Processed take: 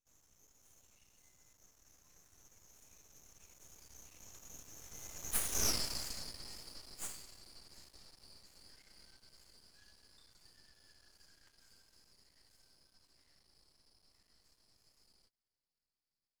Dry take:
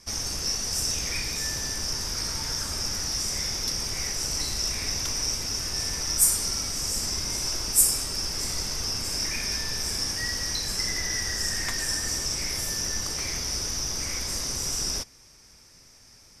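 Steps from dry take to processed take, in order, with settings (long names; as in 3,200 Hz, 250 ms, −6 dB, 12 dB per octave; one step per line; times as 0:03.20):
source passing by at 0:05.69, 48 m/s, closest 4.2 metres
half-wave rectification
level +1.5 dB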